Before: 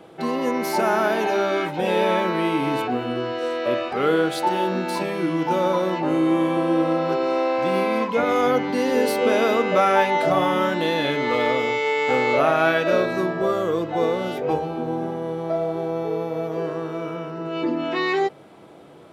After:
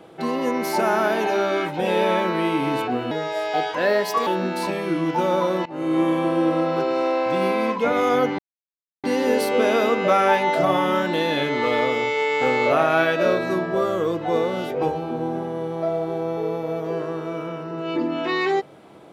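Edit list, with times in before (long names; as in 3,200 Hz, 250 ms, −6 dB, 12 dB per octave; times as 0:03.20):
0:03.11–0:04.59: play speed 128%
0:05.98–0:06.32: fade in, from −21 dB
0:08.71: splice in silence 0.65 s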